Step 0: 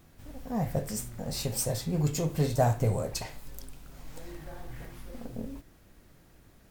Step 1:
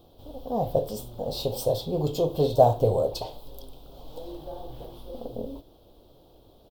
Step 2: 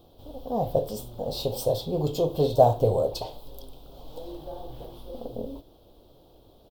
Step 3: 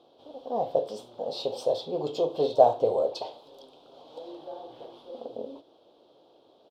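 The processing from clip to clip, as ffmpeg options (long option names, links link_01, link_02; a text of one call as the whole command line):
ffmpeg -i in.wav -af "firequalizer=gain_entry='entry(110,0);entry(180,-4);entry(310,5);entry(490,11);entry(880,6);entry(1900,-23);entry(3300,9);entry(6700,-11);entry(15000,1)':delay=0.05:min_phase=1" out.wav
ffmpeg -i in.wav -af anull out.wav
ffmpeg -i in.wav -af "highpass=350,lowpass=4500" out.wav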